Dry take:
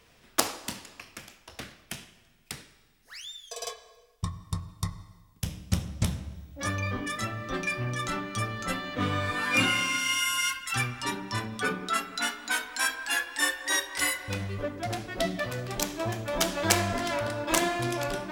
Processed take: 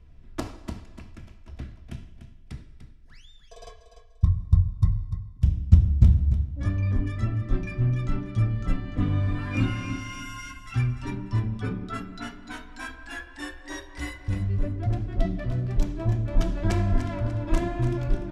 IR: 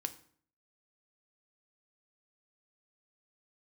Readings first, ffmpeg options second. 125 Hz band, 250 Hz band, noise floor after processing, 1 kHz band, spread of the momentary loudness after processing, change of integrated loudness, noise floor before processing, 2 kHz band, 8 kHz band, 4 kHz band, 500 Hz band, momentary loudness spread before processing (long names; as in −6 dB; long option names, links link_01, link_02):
+11.0 dB, +3.5 dB, −49 dBFS, −7.5 dB, 18 LU, +2.5 dB, −61 dBFS, −10.5 dB, below −15 dB, −14.0 dB, −4.0 dB, 17 LU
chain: -filter_complex "[0:a]aemphasis=mode=reproduction:type=riaa,aecho=1:1:3:0.36,asplit=2[link_01][link_02];[link_02]aecho=0:1:295|590|885:0.299|0.0866|0.0251[link_03];[link_01][link_03]amix=inputs=2:normalize=0,aresample=32000,aresample=44100,bass=frequency=250:gain=10,treble=frequency=4000:gain=2,bandreject=frequency=50:width_type=h:width=6,bandreject=frequency=100:width_type=h:width=6,volume=-9dB"